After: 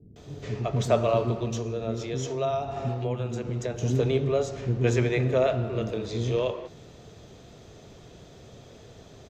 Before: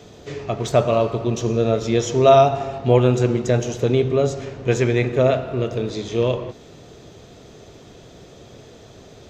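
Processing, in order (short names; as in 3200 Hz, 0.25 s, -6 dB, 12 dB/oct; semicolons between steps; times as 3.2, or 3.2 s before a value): low shelf 380 Hz +3 dB; 1.31–3.82 compressor 6:1, threshold -19 dBFS, peak gain reduction 11.5 dB; bands offset in time lows, highs 0.16 s, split 320 Hz; gain -5.5 dB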